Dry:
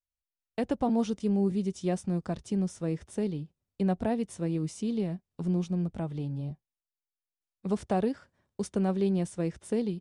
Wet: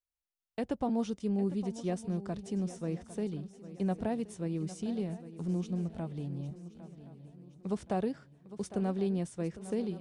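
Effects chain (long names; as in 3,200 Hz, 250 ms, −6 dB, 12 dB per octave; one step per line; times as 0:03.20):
feedback echo with a long and a short gap by turns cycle 1,073 ms, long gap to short 3 to 1, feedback 40%, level −14.5 dB
level −4.5 dB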